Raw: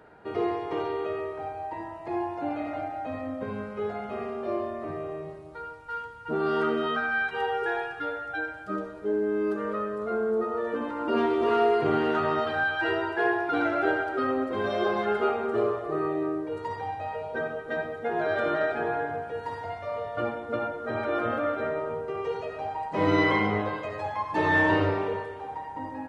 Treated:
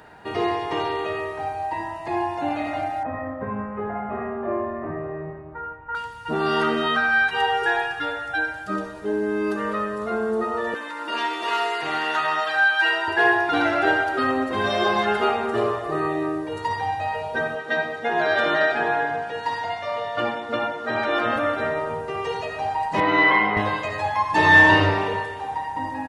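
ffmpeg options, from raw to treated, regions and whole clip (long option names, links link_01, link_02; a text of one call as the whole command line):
ffmpeg -i in.wav -filter_complex "[0:a]asettb=1/sr,asplit=3[link_01][link_02][link_03];[link_01]atrim=end=3.034[link_04];[link_02]atrim=start=3.03:end=5.95,asetpts=PTS-STARTPTS,afade=type=in:duration=0.004:curve=qsin,afade=type=out:start_time=2.916:duration=0.004:curve=qsin,lowpass=frequency=1700:width=0.5412,lowpass=frequency=1700:width=1.3066,asplit=2[link_05][link_06];[link_06]adelay=25,volume=-7dB[link_07];[link_05][link_07]amix=inputs=2:normalize=0,atrim=end_sample=128772[link_08];[link_03]atrim=start=5.946[link_09];[link_04][link_08]acrossfade=duration=0.004:curve1=hsin:curve2=qsin[link_10];[link_10][link_09]acrossfade=duration=0.004:curve1=qsin:curve2=hsin,asettb=1/sr,asplit=3[link_11][link_12][link_13];[link_11]atrim=end=10.744[link_14];[link_12]atrim=start=10.74:end=13.08,asetpts=PTS-STARTPTS,afade=type=in:duration=0.004:curve=qsin,afade=type=out:start_time=2.336:duration=0.004:curve=qsin,highpass=frequency=1400:poles=1,aecho=1:1:6.3:0.53,atrim=end_sample=103194[link_15];[link_13]atrim=start=13.076[link_16];[link_14][link_15]acrossfade=duration=0.004:curve1=hsin:curve2=qsin[link_17];[link_17][link_16]acrossfade=duration=0.004:curve1=qsin:curve2=hsin,asettb=1/sr,asplit=3[link_18][link_19][link_20];[link_18]atrim=end=17.554[link_21];[link_19]atrim=start=17.55:end=21.36,asetpts=PTS-STARTPTS,afade=type=in:duration=0.004:curve=qsin,afade=type=out:start_time=3.806:duration=0.004:curve=qsin,highpass=160,lowpass=4500,aemphasis=mode=production:type=50kf[link_22];[link_20]atrim=start=21.356[link_23];[link_21][link_22]acrossfade=duration=0.004:curve1=hsin:curve2=qsin[link_24];[link_24][link_23]acrossfade=duration=0.004:curve1=qsin:curve2=hsin,asettb=1/sr,asplit=3[link_25][link_26][link_27];[link_25]atrim=end=23.004[link_28];[link_26]atrim=start=23:end=23.57,asetpts=PTS-STARTPTS,afade=type=in:duration=0.004:curve=qsin,afade=type=out:start_time=0.566:duration=0.004:curve=qsin,highpass=150,lowpass=2500,lowshelf=frequency=250:gain=-10.5[link_29];[link_27]atrim=start=23.566[link_30];[link_28][link_29]acrossfade=duration=0.004:curve1=hsin:curve2=qsin[link_31];[link_31][link_30]acrossfade=duration=0.004:curve1=qsin:curve2=hsin,highshelf=frequency=2000:gain=10.5,aecho=1:1:1.1:0.34,volume=4.5dB" out.wav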